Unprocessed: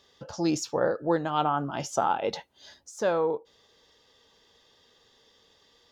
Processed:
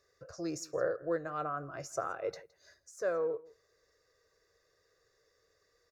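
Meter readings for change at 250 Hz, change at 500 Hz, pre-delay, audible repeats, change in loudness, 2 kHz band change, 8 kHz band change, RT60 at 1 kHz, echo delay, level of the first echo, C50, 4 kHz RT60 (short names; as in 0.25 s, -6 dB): -12.0 dB, -6.5 dB, none, 1, -8.5 dB, -6.5 dB, -8.5 dB, none, 0.165 s, -22.0 dB, none, none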